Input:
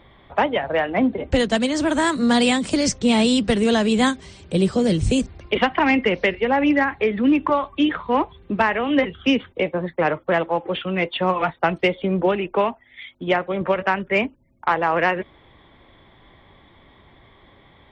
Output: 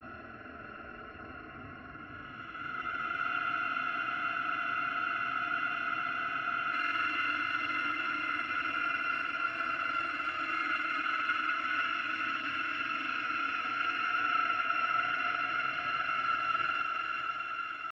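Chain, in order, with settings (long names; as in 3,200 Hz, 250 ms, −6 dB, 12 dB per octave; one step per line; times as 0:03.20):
samples in bit-reversed order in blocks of 256 samples
rectangular room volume 240 cubic metres, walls mixed, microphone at 2.9 metres
output level in coarse steps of 11 dB
extreme stretch with random phases 35×, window 0.05 s, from 0:14.56
compressor whose output falls as the input rises −28 dBFS, ratio −1
loudspeaker in its box 230–2,300 Hz, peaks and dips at 320 Hz +6 dB, 600 Hz −5 dB, 920 Hz −9 dB, 1,400 Hz +10 dB, 1,900 Hz +3 dB
feedback delay with all-pass diffusion 533 ms, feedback 57%, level −4 dB
granular cloud 105 ms, grains 20 per second, spray 24 ms, pitch spread up and down by 0 semitones
frozen spectrum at 0:03.24, 3.48 s
level +2 dB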